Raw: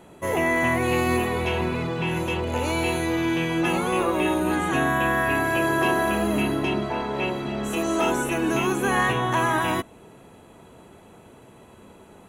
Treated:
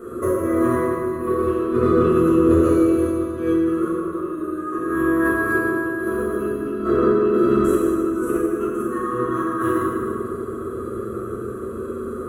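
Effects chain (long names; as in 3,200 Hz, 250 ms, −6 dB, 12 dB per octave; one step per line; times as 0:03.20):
drawn EQ curve 110 Hz 0 dB, 170 Hz −7 dB, 440 Hz +12 dB, 870 Hz −27 dB, 1,200 Hz +14 dB, 2,200 Hz −18 dB, 6,700 Hz −11 dB, 11,000 Hz −1 dB
compressor whose output falls as the input rises −26 dBFS, ratio −0.5
convolution reverb RT60 2.4 s, pre-delay 4 ms, DRR −8 dB
level −2.5 dB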